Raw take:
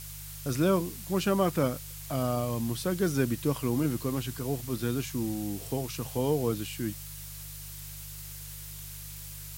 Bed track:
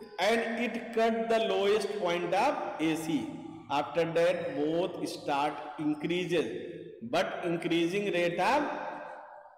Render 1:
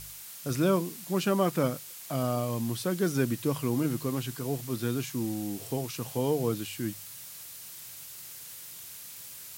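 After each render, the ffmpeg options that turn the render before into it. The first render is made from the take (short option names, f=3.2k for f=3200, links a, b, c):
-af "bandreject=f=50:t=h:w=4,bandreject=f=100:t=h:w=4,bandreject=f=150:t=h:w=4"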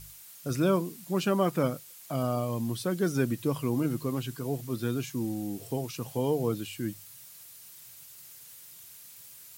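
-af "afftdn=nr=7:nf=-45"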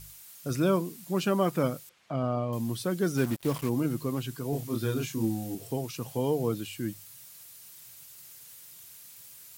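-filter_complex "[0:a]asettb=1/sr,asplit=3[a][b][c];[a]atrim=end=1.894[d];[b]atrim=start=1.89:end=2.53,asetpts=PTS-STARTPTS,afade=t=in:d=0.004:c=qsin,afade=t=out:st=0.636:d=0.004:c=qsin,lowpass=2.7k[e];[c]atrim=start=2.526[f];[d][e]acrossfade=d=0.004:c1=hsin:c2=qsin[g];[g][f]acrossfade=d=0.004:c1=qsin:c2=hsin,asplit=3[h][i][j];[h]afade=t=out:st=3.16:d=0.02[k];[i]acrusher=bits=5:mix=0:aa=0.5,afade=t=in:st=3.16:d=0.02,afade=t=out:st=3.68:d=0.02[l];[j]afade=t=in:st=3.68:d=0.02[m];[k][l][m]amix=inputs=3:normalize=0,asettb=1/sr,asplit=3[n][o][p];[n]atrim=end=4.504[q];[o]atrim=start=4.5:end=5.55,asetpts=PTS-STARTPTS,afade=t=in:d=0.004:c=qsin,afade=t=out:st=1.046:d=0.004:c=qsin,asplit=2[r][s];[s]adelay=27,volume=-2dB[t];[r][t]amix=inputs=2:normalize=0,atrim=end_sample=46305[u];[p]atrim=start=5.546[v];[q][u]acrossfade=d=0.004:c1=hsin:c2=qsin[w];[w][v]acrossfade=d=0.004:c1=qsin:c2=hsin"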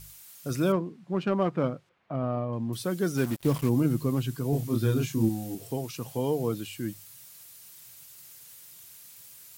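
-filter_complex "[0:a]asettb=1/sr,asplit=3[a][b][c];[a]atrim=end=0.724[d];[b]atrim=start=0.72:end=2.73,asetpts=PTS-STARTPTS,afade=t=in:d=0.004:c=qsin,afade=t=out:st=2.006:d=0.004:c=qsin,adynamicsmooth=sensitivity=1.5:basefreq=1.9k[e];[c]atrim=start=2.726[f];[d][e]acrossfade=d=0.004:c1=hsin:c2=qsin[g];[g][f]acrossfade=d=0.004:c1=qsin:c2=hsin,asettb=1/sr,asplit=3[h][i][j];[h]atrim=end=3.404[k];[i]atrim=start=3.4:end=5.29,asetpts=PTS-STARTPTS,afade=t=in:d=0.004:c=qsin,afade=t=out:st=1.886:d=0.004:c=qsin,lowshelf=f=270:g=7.5[l];[j]atrim=start=5.286[m];[k][l]acrossfade=d=0.004:c1=hsin:c2=qsin[n];[n][m]acrossfade=d=0.004:c1=qsin:c2=hsin"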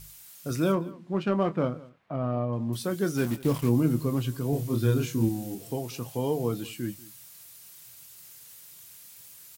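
-filter_complex "[0:a]asplit=2[a][b];[b]adelay=25,volume=-11dB[c];[a][c]amix=inputs=2:normalize=0,aecho=1:1:189:0.0891"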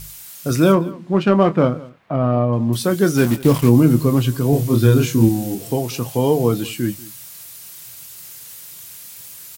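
-af "volume=11.5dB,alimiter=limit=-2dB:level=0:latency=1"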